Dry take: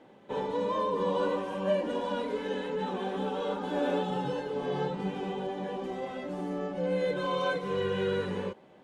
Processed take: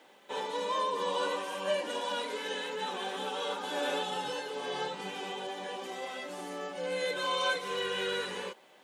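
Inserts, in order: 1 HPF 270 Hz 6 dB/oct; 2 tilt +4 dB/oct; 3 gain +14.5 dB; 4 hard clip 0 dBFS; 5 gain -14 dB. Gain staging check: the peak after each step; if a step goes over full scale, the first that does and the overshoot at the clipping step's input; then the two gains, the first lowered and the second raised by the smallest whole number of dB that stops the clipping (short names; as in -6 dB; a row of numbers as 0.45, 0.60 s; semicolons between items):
-18.0, -19.0, -4.5, -4.5, -18.5 dBFS; no overload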